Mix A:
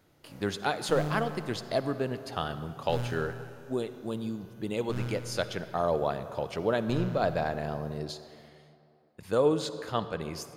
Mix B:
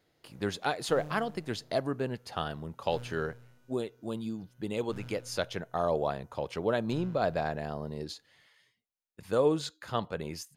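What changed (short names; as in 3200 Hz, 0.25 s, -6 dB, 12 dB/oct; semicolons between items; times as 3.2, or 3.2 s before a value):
background -10.0 dB; reverb: off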